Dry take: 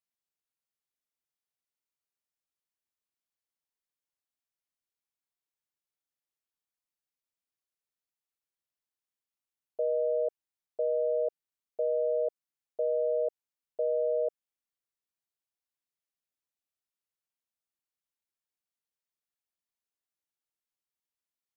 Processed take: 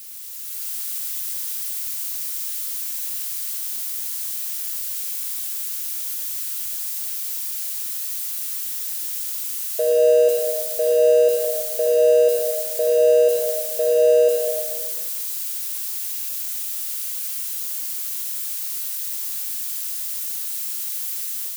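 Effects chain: switching spikes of -32 dBFS; AGC gain up to 8.5 dB; reverb RT60 1.5 s, pre-delay 68 ms, DRR 0 dB

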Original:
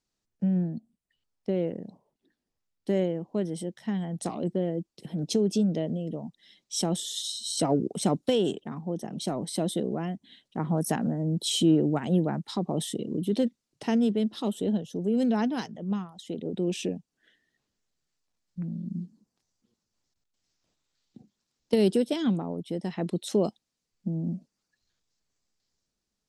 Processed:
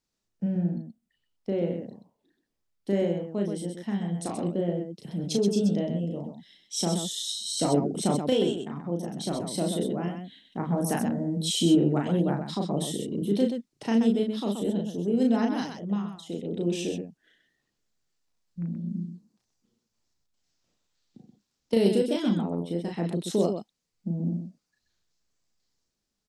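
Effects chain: loudspeakers at several distances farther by 12 m -3 dB, 44 m -6 dB; gain -1.5 dB

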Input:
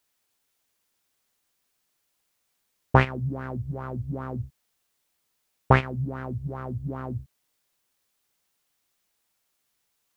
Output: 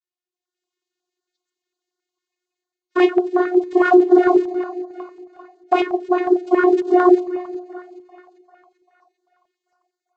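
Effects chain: 3.83–4.23 minimum comb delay 3.6 ms; spectral noise reduction 26 dB; AGC gain up to 13 dB; noise vocoder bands 16; in parallel at -10.5 dB: short-mantissa float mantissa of 2-bit; on the sum: vocoder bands 32, saw 360 Hz; on a send: split-band echo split 700 Hz, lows 0.211 s, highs 0.394 s, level -14.5 dB; on the sum: maximiser +10.5 dB; stepped notch 11 Hz 770–2400 Hz; gain -2 dB

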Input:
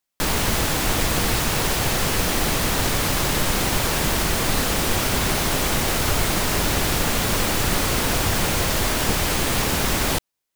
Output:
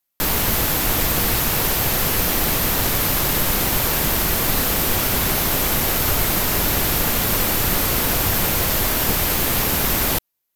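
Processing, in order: bell 13000 Hz +14.5 dB 0.28 oct

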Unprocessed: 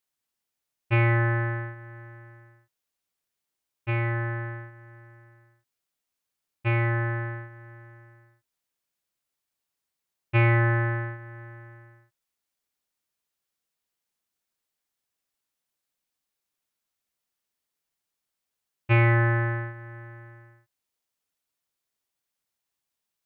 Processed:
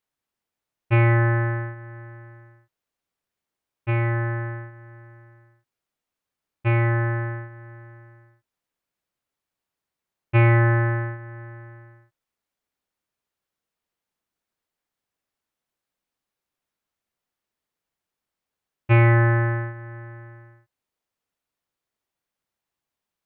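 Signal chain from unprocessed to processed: high shelf 2900 Hz -10.5 dB; gain +4.5 dB

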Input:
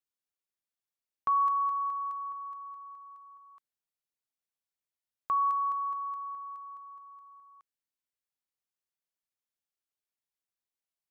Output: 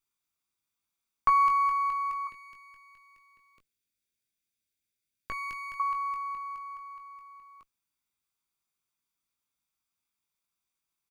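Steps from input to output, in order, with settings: minimum comb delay 0.85 ms; 2.27–5.8 band shelf 980 Hz -15.5 dB 1 oct; doubler 20 ms -6.5 dB; gain +7 dB

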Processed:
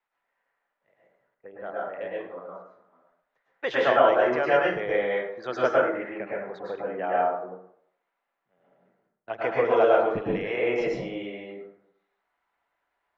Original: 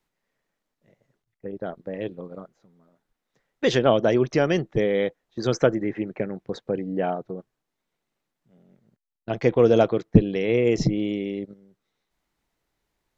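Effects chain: three-band isolator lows -23 dB, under 590 Hz, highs -22 dB, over 2600 Hz; plate-style reverb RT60 0.69 s, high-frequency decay 0.55×, pre-delay 95 ms, DRR -5.5 dB

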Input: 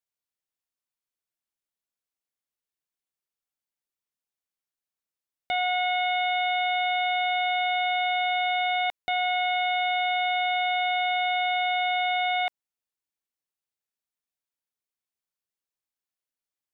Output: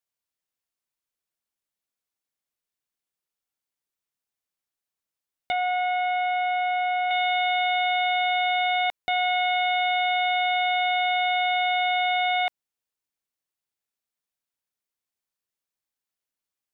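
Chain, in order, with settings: 5.52–7.11 LPF 2000 Hz 12 dB/oct; gain +2 dB

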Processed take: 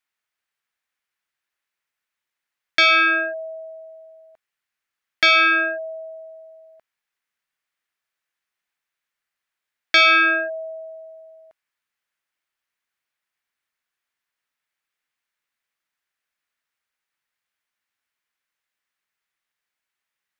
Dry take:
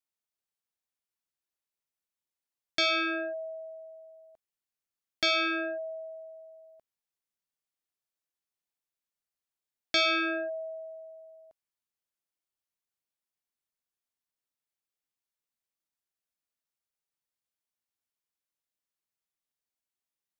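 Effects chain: bell 1800 Hz +14.5 dB 1.9 oct; gain +2 dB

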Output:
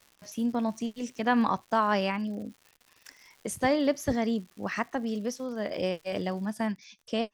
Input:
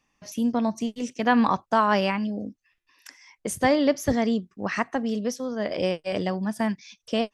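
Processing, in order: crackle 220/s -39 dBFS, from 6.5 s 27/s; gain -4.5 dB

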